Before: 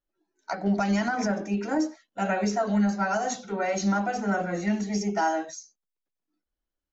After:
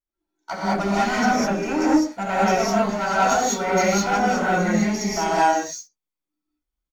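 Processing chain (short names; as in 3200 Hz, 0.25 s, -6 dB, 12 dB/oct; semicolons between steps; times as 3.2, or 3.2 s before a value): comb 0.9 ms, depth 32%; sample leveller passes 2; non-linear reverb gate 0.23 s rising, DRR -7.5 dB; gain -5 dB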